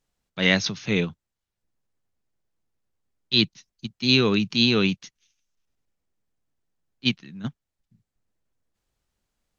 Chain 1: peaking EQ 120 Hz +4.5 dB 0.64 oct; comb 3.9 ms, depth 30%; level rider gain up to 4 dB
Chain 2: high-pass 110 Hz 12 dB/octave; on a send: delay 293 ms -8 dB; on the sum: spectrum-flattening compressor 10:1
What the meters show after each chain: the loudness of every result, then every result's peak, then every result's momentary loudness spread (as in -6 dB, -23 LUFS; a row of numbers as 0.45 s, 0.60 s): -19.5 LUFS, -23.0 LUFS; -2.5 dBFS, -3.0 dBFS; 16 LU, 10 LU